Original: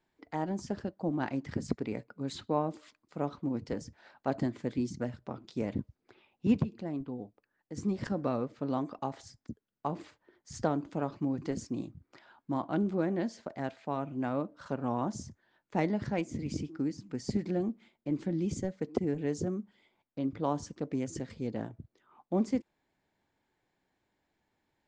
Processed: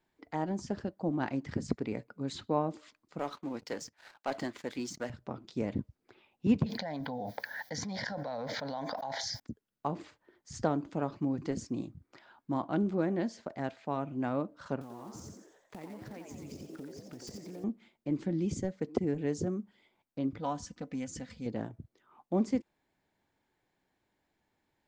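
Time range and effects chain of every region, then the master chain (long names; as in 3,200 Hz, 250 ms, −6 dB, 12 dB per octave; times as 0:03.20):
0:03.19–0:05.10: high-pass filter 1,200 Hz 6 dB per octave + leveller curve on the samples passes 2
0:06.66–0:09.40: high-pass filter 850 Hz 6 dB per octave + phaser with its sweep stopped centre 1,800 Hz, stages 8 + envelope flattener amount 100%
0:14.81–0:17.64: one scale factor per block 5 bits + downward compressor 10 to 1, threshold −42 dBFS + echo with shifted repeats 88 ms, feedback 47%, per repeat +110 Hz, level −5.5 dB
0:20.38–0:21.46: parametric band 370 Hz −12 dB 1.1 octaves + notch filter 1,100 Hz, Q 8.3 + comb filter 4 ms, depth 51%
whole clip: no processing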